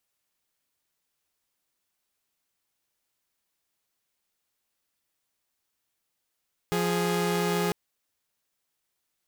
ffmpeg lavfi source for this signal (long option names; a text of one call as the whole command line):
ffmpeg -f lavfi -i "aevalsrc='0.0596*((2*mod(174.61*t,1)-1)+(2*mod(415.3*t,1)-1))':duration=1:sample_rate=44100" out.wav